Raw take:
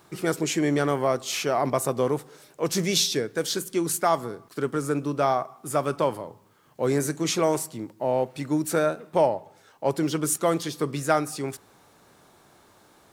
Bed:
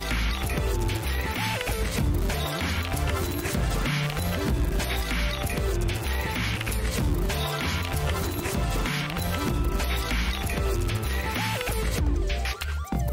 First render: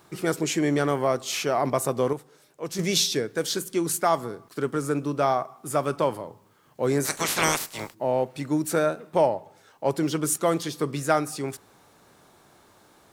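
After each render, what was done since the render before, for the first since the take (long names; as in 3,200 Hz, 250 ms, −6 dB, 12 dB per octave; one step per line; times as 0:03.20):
0:02.13–0:02.79: clip gain −7 dB
0:07.04–0:07.93: ceiling on every frequency bin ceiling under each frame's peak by 29 dB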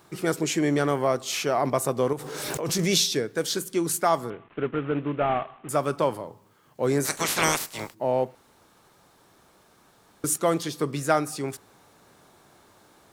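0:02.15–0:03.09: background raised ahead of every attack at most 24 dB per second
0:04.30–0:05.69: variable-slope delta modulation 16 kbit/s
0:08.35–0:10.24: fill with room tone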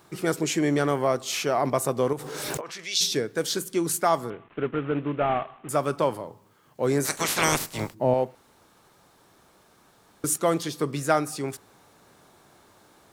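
0:02.60–0:03.00: resonant band-pass 1,100 Hz → 5,200 Hz, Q 1.4
0:07.52–0:08.14: low-shelf EQ 340 Hz +10.5 dB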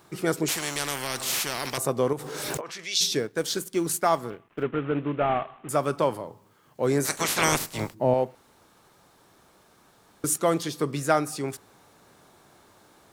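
0:00.48–0:01.78: every bin compressed towards the loudest bin 4 to 1
0:03.18–0:04.63: mu-law and A-law mismatch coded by A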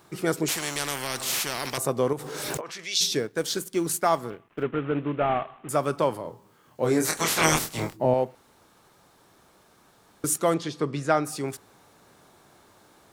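0:06.22–0:08.06: double-tracking delay 25 ms −4.5 dB
0:10.54–0:11.25: high-frequency loss of the air 84 metres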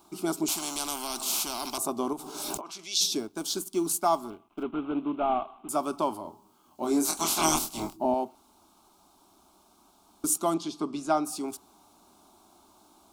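phaser with its sweep stopped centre 490 Hz, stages 6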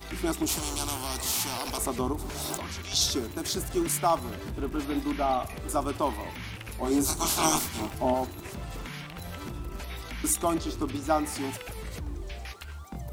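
mix in bed −11.5 dB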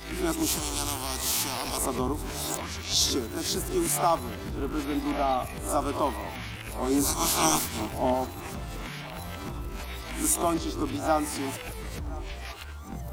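peak hold with a rise ahead of every peak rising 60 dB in 0.34 s
feedback echo with a band-pass in the loop 1,017 ms, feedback 79%, band-pass 970 Hz, level −19 dB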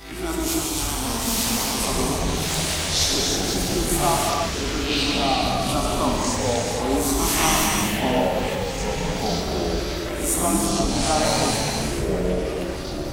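reverb whose tail is shaped and stops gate 370 ms flat, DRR −2 dB
delay with pitch and tempo change per echo 735 ms, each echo −6 semitones, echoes 2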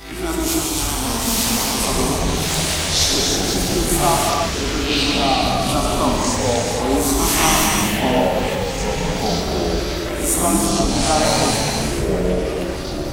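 level +4 dB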